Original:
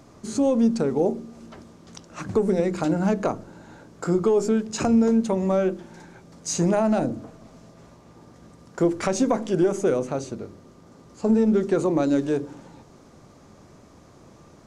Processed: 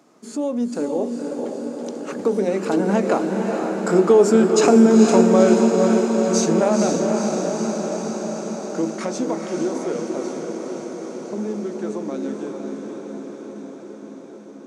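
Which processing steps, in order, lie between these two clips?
Doppler pass-by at 4.56 s, 16 m/s, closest 21 m; high-pass 200 Hz 24 dB/octave; echo that smears into a reverb 482 ms, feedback 74%, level -4 dB; trim +7.5 dB

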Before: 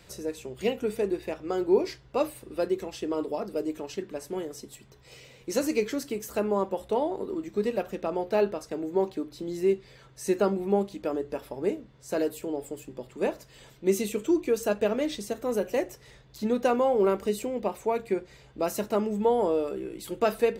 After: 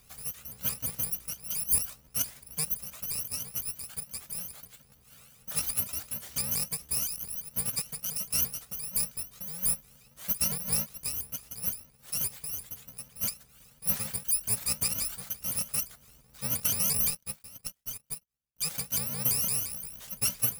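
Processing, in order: bit-reversed sample order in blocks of 128 samples; 17.10–18.62 s: power-law waveshaper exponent 2; vibrato with a chosen wave saw up 5.8 Hz, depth 250 cents; trim -4 dB

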